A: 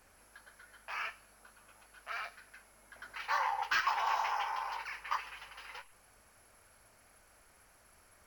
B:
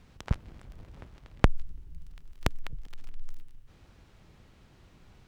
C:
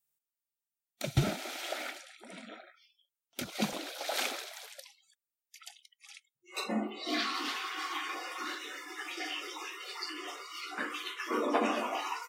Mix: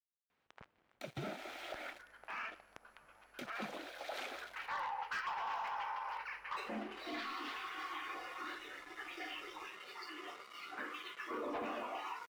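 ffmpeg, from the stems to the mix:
-filter_complex "[0:a]adelay=1400,volume=0.891[s0];[1:a]highpass=f=870:p=1,adelay=300,volume=0.237[s1];[2:a]acrusher=bits=6:mix=0:aa=0.5,highpass=140,volume=0.562[s2];[s0][s1][s2]amix=inputs=3:normalize=0,bass=f=250:g=-6,treble=f=4000:g=-14,asoftclip=type=tanh:threshold=0.0316,alimiter=level_in=3.35:limit=0.0631:level=0:latency=1:release=96,volume=0.299"

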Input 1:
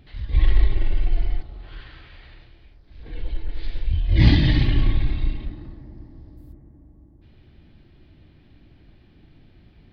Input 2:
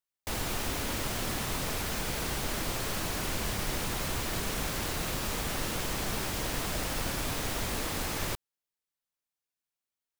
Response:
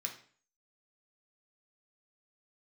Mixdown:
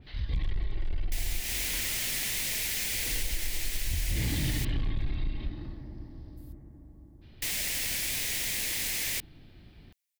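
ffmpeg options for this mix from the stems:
-filter_complex "[0:a]alimiter=limit=0.282:level=0:latency=1:release=281,asoftclip=type=hard:threshold=0.15,adynamicequalizer=threshold=0.00398:dfrequency=2800:dqfactor=0.7:tfrequency=2800:tqfactor=0.7:attack=5:release=100:ratio=0.375:range=2.5:mode=cutabove:tftype=highshelf,volume=0.841[s0];[1:a]highshelf=f=1600:t=q:w=3:g=7.5,adelay=850,volume=0.335,asplit=3[s1][s2][s3];[s1]atrim=end=4.65,asetpts=PTS-STARTPTS,afade=t=out:st=4.646:d=0.004:c=hsin[s4];[s2]atrim=start=4.65:end=7.42,asetpts=PTS-STARTPTS,volume=0[s5];[s3]atrim=start=7.42,asetpts=PTS-STARTPTS,afade=t=in:d=0.004:c=hsin[s6];[s4][s5][s6]concat=n=3:v=0:a=1[s7];[s0][s7]amix=inputs=2:normalize=0,highshelf=f=3800:g=10,acompressor=threshold=0.0501:ratio=6"

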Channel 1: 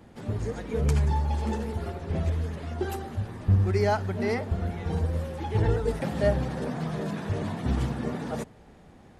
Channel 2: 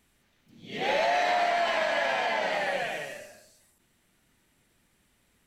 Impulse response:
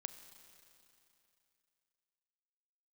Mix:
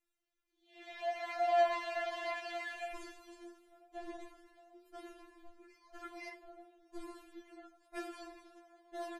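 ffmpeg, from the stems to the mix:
-filter_complex "[0:a]aeval=exprs='val(0)*pow(10,-29*if(lt(mod(1*n/s,1),2*abs(1)/1000),1-mod(1*n/s,1)/(2*abs(1)/1000),(mod(1*n/s,1)-2*abs(1)/1000)/(1-2*abs(1)/1000))/20)':c=same,adelay=1950,volume=0.75[s0];[1:a]volume=0.376,afade=t=in:st=0.91:d=0.67:silence=0.298538,afade=t=out:st=2.47:d=0.79:silence=0.316228[s1];[s0][s1]amix=inputs=2:normalize=0,bandreject=f=60:t=h:w=6,bandreject=f=120:t=h:w=6,bandreject=f=180:t=h:w=6,bandreject=f=240:t=h:w=6,bandreject=f=300:t=h:w=6,bandreject=f=360:t=h:w=6,afftfilt=real='re*4*eq(mod(b,16),0)':imag='im*4*eq(mod(b,16),0)':win_size=2048:overlap=0.75"

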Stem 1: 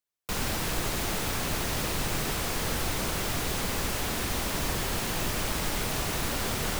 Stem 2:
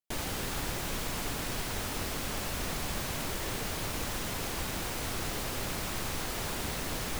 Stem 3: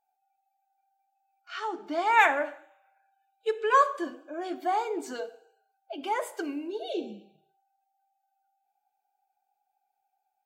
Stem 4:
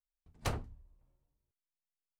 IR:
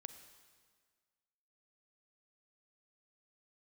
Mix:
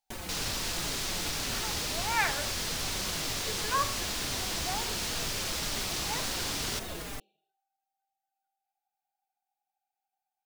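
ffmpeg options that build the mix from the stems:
-filter_complex "[0:a]equalizer=f=4900:w=0.56:g=13,volume=0.316[s0];[1:a]asplit=2[s1][s2];[s2]adelay=4.6,afreqshift=-2.1[s3];[s1][s3]amix=inputs=2:normalize=1,volume=1.26[s4];[2:a]highpass=f=1300:p=1,volume=0.562[s5];[3:a]volume=0.75[s6];[s4][s6]amix=inputs=2:normalize=0,alimiter=level_in=1.88:limit=0.0631:level=0:latency=1:release=86,volume=0.531,volume=1[s7];[s0][s5][s7]amix=inputs=3:normalize=0"

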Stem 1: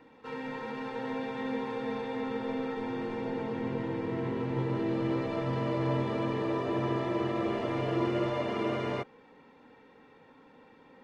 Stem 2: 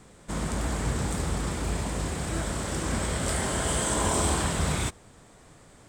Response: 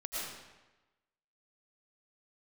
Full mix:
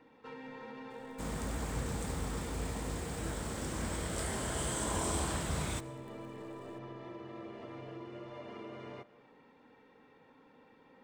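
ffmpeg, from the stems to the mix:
-filter_complex "[0:a]acompressor=threshold=0.0112:ratio=6,volume=0.531,asplit=2[s0][s1];[s1]volume=0.126[s2];[1:a]acrusher=bits=8:dc=4:mix=0:aa=0.000001,adelay=900,volume=0.335,asplit=2[s3][s4];[s4]volume=0.0944[s5];[2:a]atrim=start_sample=2205[s6];[s2][s5]amix=inputs=2:normalize=0[s7];[s7][s6]afir=irnorm=-1:irlink=0[s8];[s0][s3][s8]amix=inputs=3:normalize=0"

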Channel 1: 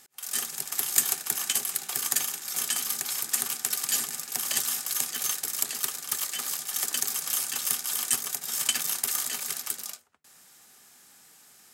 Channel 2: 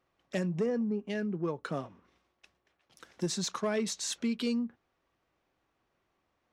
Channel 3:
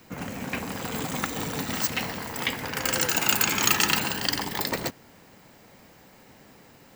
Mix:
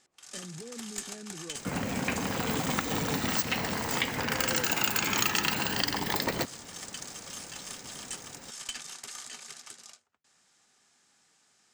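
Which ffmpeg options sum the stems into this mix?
-filter_complex "[0:a]lowpass=f=7800:w=0.5412,lowpass=f=7800:w=1.3066,aeval=exprs='(tanh(6.31*val(0)+0.2)-tanh(0.2))/6.31':c=same,volume=0.376[s0];[1:a]equalizer=f=330:w=0.46:g=8.5,alimiter=level_in=2:limit=0.0631:level=0:latency=1,volume=0.501,volume=0.376[s1];[2:a]equalizer=f=11000:t=o:w=0.84:g=-5.5,adelay=1550,volume=1.41[s2];[s0][s1][s2]amix=inputs=3:normalize=0,acompressor=threshold=0.0447:ratio=2.5"

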